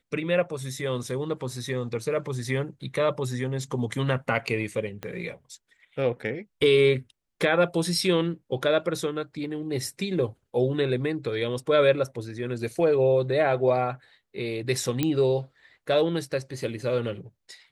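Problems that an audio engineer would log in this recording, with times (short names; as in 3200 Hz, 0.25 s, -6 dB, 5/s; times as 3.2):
5.03 pop -20 dBFS
15.03 pop -11 dBFS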